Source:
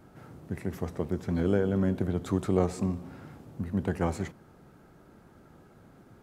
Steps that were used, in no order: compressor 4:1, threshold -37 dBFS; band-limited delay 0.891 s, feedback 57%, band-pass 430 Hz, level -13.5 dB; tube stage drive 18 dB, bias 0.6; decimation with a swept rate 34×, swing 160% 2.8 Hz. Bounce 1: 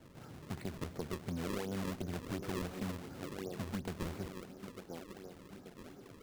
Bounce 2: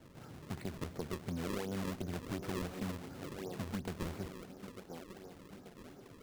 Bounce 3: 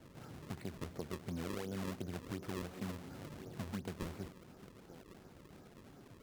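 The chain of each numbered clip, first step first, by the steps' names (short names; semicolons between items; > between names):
band-limited delay > tube stage > decimation with a swept rate > compressor; tube stage > band-limited delay > decimation with a swept rate > compressor; compressor > band-limited delay > decimation with a swept rate > tube stage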